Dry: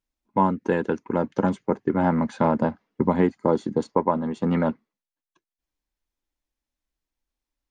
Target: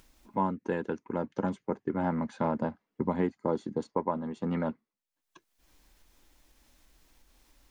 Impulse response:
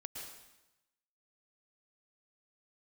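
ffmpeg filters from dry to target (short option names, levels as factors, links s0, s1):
-af "acompressor=mode=upward:threshold=0.0398:ratio=2.5,volume=0.376"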